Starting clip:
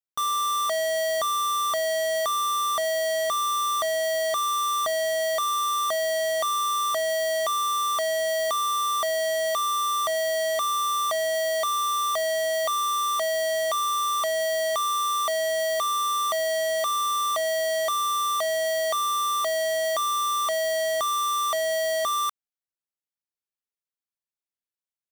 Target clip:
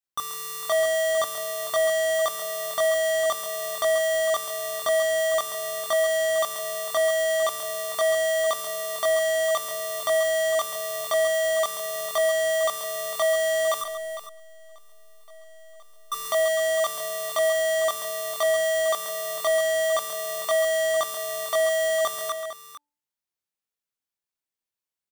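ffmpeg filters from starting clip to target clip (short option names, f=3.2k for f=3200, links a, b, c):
-filter_complex "[0:a]bandreject=f=292.1:t=h:w=4,bandreject=f=584.2:t=h:w=4,bandreject=f=876.3:t=h:w=4,asettb=1/sr,asplit=3[a][b][c];[a]atrim=end=13.814[d];[b]atrim=start=13.81:end=16.12,asetpts=PTS-STARTPTS,afade=t=in:d=0.004:c=qsin,afade=t=out:st=2.306:d=0.004:c=qsin,aeval=exprs='(tanh(398*val(0)+0.7)-tanh(0.7))/398':c=same[e];[c]atrim=start=16.116[f];[d][e]acrossfade=d=0.004:c1=hsin:c2=qsin[g];[g][f]acrossfade=d=0.004:c1=qsin:c2=hsin,asplit=2[h][i];[i]adelay=25,volume=-2dB[j];[h][j]amix=inputs=2:normalize=0,aecho=1:1:136|454:0.335|0.251"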